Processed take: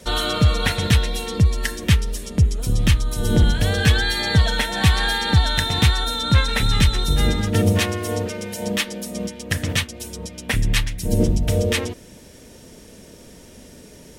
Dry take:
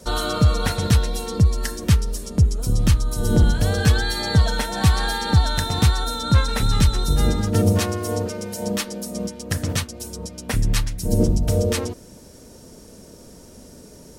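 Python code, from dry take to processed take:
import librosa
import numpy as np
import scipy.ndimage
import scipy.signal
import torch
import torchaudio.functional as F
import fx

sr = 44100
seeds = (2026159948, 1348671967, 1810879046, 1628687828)

y = fx.band_shelf(x, sr, hz=2500.0, db=8.0, octaves=1.3)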